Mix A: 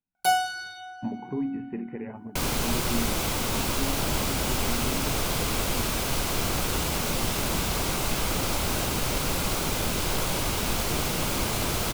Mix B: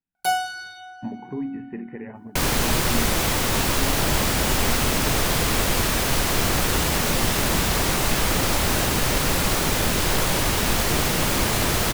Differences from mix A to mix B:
second sound +5.5 dB; master: add bell 1800 Hz +8 dB 0.2 oct

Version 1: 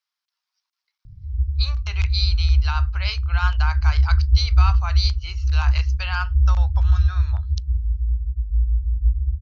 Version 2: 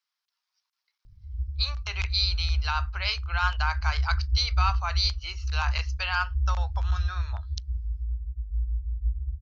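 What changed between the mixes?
background: add bell 140 Hz -14 dB 1.6 oct; master: add low shelf 92 Hz -7 dB

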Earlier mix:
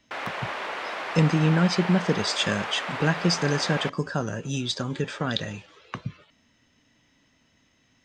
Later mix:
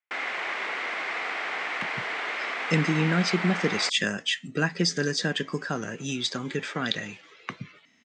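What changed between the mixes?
speech: entry +1.55 s; master: add speaker cabinet 190–8400 Hz, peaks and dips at 570 Hz -6 dB, 930 Hz -4 dB, 2100 Hz +8 dB, 7900 Hz +3 dB

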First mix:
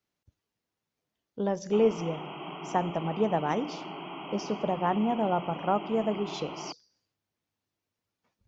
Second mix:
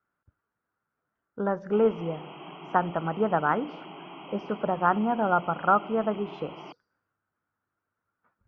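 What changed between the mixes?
speech: add synth low-pass 1400 Hz, resonance Q 6.3; background -3.5 dB

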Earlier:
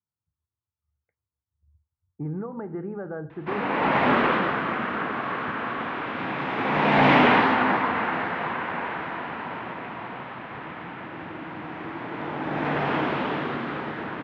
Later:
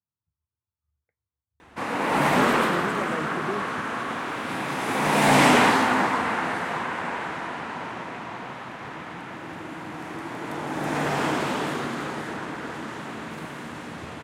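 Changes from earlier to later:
background: entry -1.70 s; master: remove LPF 3300 Hz 24 dB/oct

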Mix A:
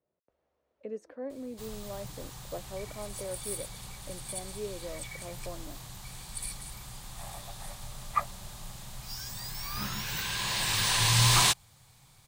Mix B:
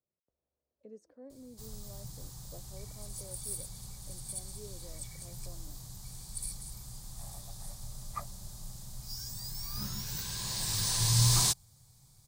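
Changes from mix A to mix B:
speech -5.5 dB; master: add EQ curve 110 Hz 0 dB, 2800 Hz -16 dB, 4900 Hz -1 dB

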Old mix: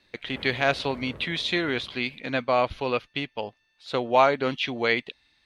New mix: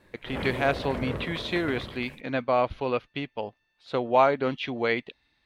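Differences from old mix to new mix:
speech: add high shelf 2400 Hz -10 dB; background +10.5 dB

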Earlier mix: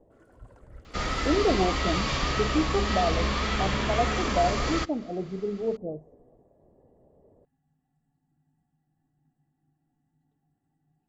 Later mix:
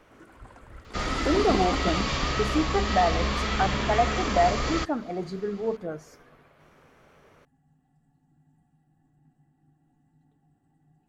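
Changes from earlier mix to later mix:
speech: remove inverse Chebyshev low-pass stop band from 1400 Hz, stop band 40 dB; first sound +8.5 dB

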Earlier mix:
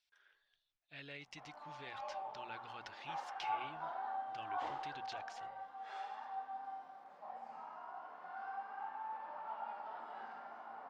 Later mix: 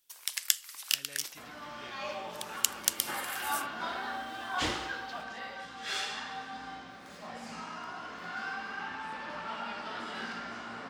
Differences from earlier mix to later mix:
first sound: unmuted; second sound: remove band-pass 810 Hz, Q 4.3; master: add low shelf 110 Hz -5.5 dB

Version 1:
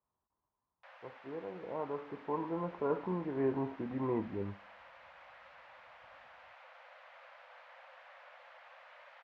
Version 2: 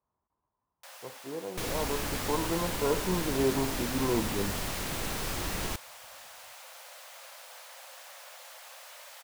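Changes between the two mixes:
second sound: unmuted; master: remove ladder low-pass 2800 Hz, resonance 20%

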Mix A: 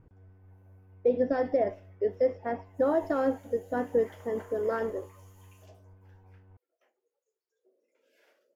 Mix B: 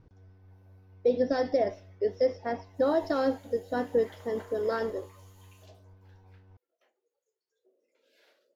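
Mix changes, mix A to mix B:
speech: add synth low-pass 5900 Hz, resonance Q 4.8; master: add bell 4000 Hz +12 dB 0.48 oct

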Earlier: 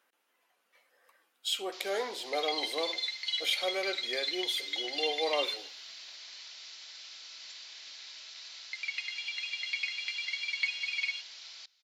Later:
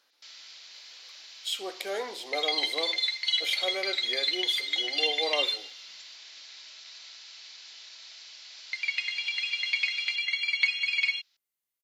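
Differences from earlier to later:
first sound: entry -1.50 s; second sound +6.5 dB

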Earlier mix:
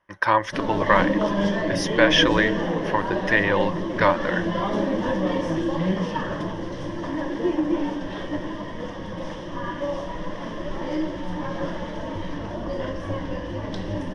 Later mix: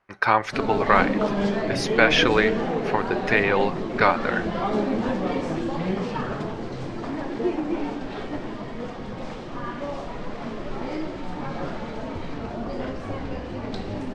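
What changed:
speech: send +10.5 dB; master: remove ripple EQ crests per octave 1.2, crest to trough 11 dB

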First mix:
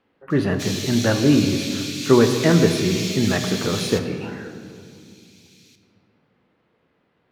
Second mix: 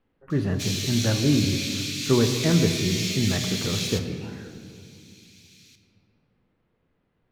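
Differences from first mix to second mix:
speech -9.5 dB; master: remove HPF 310 Hz 6 dB/oct

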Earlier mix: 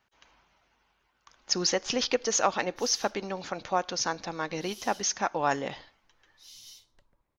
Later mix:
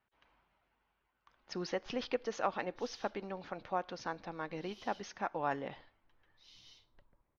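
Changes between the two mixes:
speech -7.0 dB; master: add air absorption 280 m

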